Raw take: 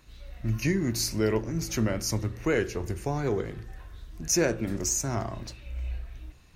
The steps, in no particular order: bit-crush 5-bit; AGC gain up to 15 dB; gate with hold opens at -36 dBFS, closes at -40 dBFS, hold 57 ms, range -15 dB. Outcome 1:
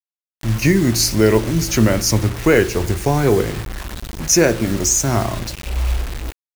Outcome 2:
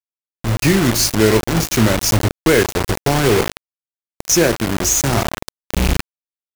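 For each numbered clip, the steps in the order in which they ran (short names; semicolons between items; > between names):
AGC > gate with hold > bit-crush; gate with hold > bit-crush > AGC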